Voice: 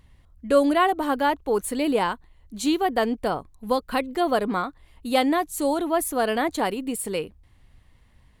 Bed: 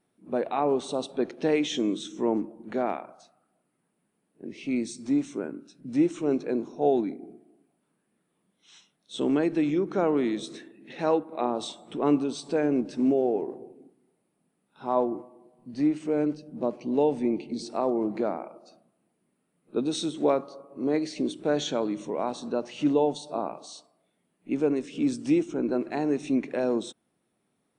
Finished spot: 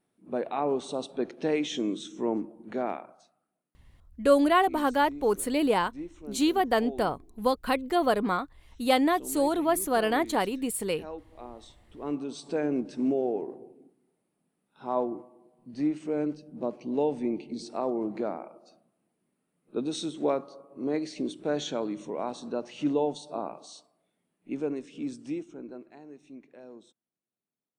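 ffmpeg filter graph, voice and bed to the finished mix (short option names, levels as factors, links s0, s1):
-filter_complex "[0:a]adelay=3750,volume=0.794[s0];[1:a]volume=3.16,afade=t=out:st=2.94:d=0.82:silence=0.211349,afade=t=in:st=11.92:d=0.56:silence=0.223872,afade=t=out:st=24.04:d=1.95:silence=0.125893[s1];[s0][s1]amix=inputs=2:normalize=0"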